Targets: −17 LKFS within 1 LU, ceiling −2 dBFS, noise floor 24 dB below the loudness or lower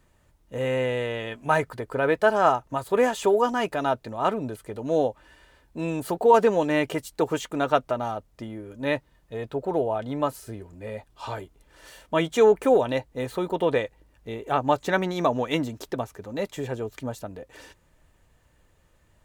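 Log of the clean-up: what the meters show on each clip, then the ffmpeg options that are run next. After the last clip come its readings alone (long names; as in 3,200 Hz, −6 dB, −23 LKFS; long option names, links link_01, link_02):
integrated loudness −25.5 LKFS; sample peak −6.5 dBFS; target loudness −17.0 LKFS
→ -af "volume=8.5dB,alimiter=limit=-2dB:level=0:latency=1"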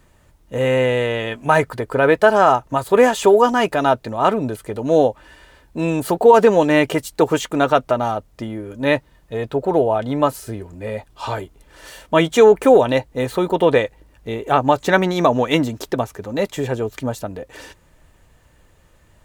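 integrated loudness −17.5 LKFS; sample peak −2.0 dBFS; background noise floor −54 dBFS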